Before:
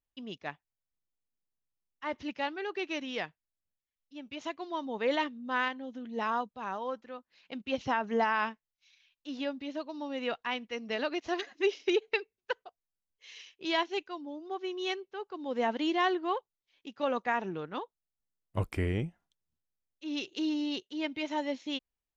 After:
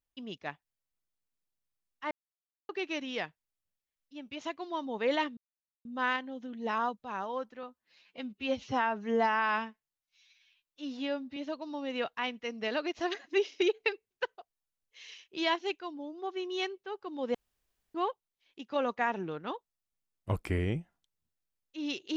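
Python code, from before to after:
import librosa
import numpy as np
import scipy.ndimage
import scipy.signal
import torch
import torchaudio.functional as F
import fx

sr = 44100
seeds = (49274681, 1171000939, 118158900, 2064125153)

y = fx.edit(x, sr, fx.silence(start_s=2.11, length_s=0.58),
    fx.insert_silence(at_s=5.37, length_s=0.48),
    fx.stretch_span(start_s=7.15, length_s=2.49, factor=1.5),
    fx.room_tone_fill(start_s=15.62, length_s=0.6), tone=tone)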